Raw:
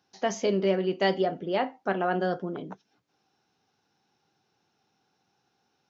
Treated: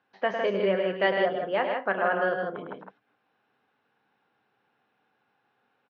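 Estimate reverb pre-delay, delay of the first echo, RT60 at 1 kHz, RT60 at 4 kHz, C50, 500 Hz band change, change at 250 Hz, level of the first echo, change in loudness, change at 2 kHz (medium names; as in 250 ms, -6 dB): no reverb, 104 ms, no reverb, no reverb, no reverb, +1.5 dB, -4.5 dB, -7.0 dB, +1.0 dB, +6.0 dB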